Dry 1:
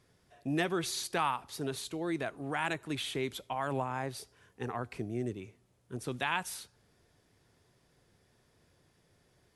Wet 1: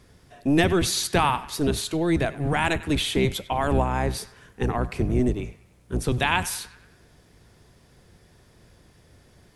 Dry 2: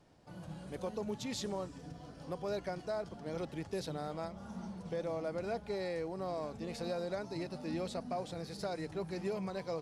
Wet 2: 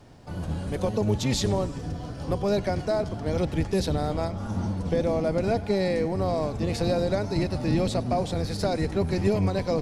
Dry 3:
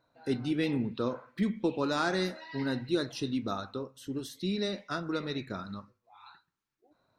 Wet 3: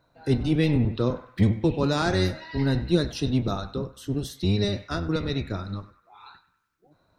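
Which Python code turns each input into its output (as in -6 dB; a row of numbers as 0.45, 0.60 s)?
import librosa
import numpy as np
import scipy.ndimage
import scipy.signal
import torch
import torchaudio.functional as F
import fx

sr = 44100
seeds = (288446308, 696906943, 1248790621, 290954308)

y = fx.octave_divider(x, sr, octaves=1, level_db=2.0)
y = fx.echo_banded(y, sr, ms=97, feedback_pct=57, hz=1700.0, wet_db=-15.5)
y = fx.dynamic_eq(y, sr, hz=1300.0, q=1.6, threshold_db=-50.0, ratio=4.0, max_db=-4)
y = y * 10.0 ** (-26 / 20.0) / np.sqrt(np.mean(np.square(y)))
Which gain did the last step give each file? +11.0, +12.5, +5.5 dB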